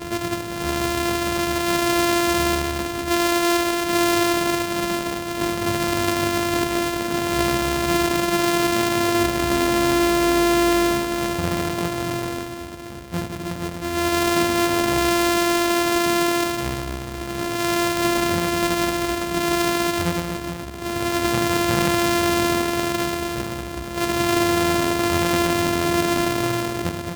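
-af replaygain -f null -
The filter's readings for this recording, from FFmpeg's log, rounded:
track_gain = +3.2 dB
track_peak = 0.290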